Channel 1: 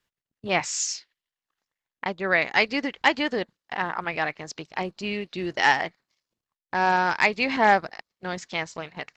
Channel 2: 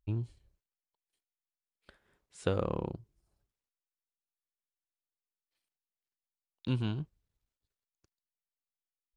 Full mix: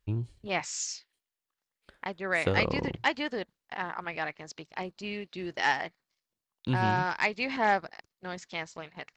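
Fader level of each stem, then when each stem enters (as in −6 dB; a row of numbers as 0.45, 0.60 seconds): −7.0, +2.5 decibels; 0.00, 0.00 seconds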